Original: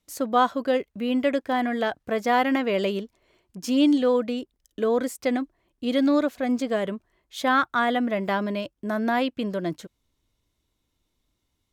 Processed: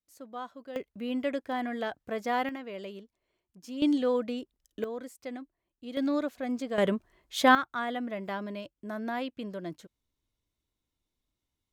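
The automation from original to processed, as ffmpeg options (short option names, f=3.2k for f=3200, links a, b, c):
-af "asetnsamples=n=441:p=0,asendcmd='0.76 volume volume -8dB;2.49 volume volume -16dB;3.82 volume volume -6dB;4.84 volume volume -15dB;5.97 volume volume -8dB;6.78 volume volume 2.5dB;7.55 volume volume -10dB',volume=-19.5dB"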